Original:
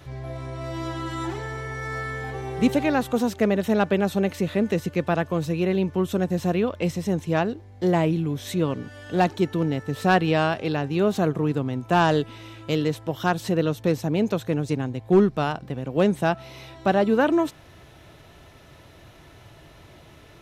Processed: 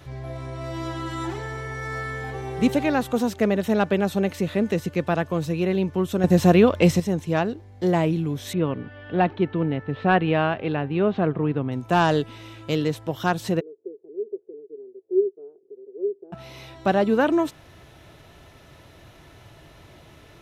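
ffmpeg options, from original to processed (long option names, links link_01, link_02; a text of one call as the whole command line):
ffmpeg -i in.wav -filter_complex "[0:a]asettb=1/sr,asplit=3[link_01][link_02][link_03];[link_01]atrim=end=8.534[link_04];[link_02]atrim=start=8.53:end=11.72,asetpts=PTS-STARTPTS,afade=type=in:duration=0.004:curve=qsin,afade=type=out:start_time=3.186:duration=0.004:curve=qsin,lowpass=frequency=3100:width=0.5412,lowpass=frequency=3100:width=1.3066[link_05];[link_03]atrim=start=11.716[link_06];[link_04][link_05]acrossfade=duration=0.004:curve1=hsin:curve2=qsin[link_07];[link_07][link_06]acrossfade=duration=0.004:curve1=qsin:curve2=hsin,asplit=3[link_08][link_09][link_10];[link_08]afade=type=out:start_time=13.59:duration=0.02[link_11];[link_09]asuperpass=centerf=400:order=4:qfactor=7,afade=type=in:start_time=13.59:duration=0.02,afade=type=out:start_time=16.32:duration=0.02[link_12];[link_10]afade=type=in:start_time=16.32:duration=0.02[link_13];[link_11][link_12][link_13]amix=inputs=3:normalize=0,asplit=3[link_14][link_15][link_16];[link_14]atrim=end=6.242[link_17];[link_15]atrim=start=6.238:end=7.002,asetpts=PTS-STARTPTS,volume=8dB[link_18];[link_16]atrim=start=6.998[link_19];[link_17][link_18]acrossfade=duration=0.004:curve1=hsin:curve2=hsin[link_20];[link_20][link_19]acrossfade=duration=0.004:curve1=hsin:curve2=hsin" out.wav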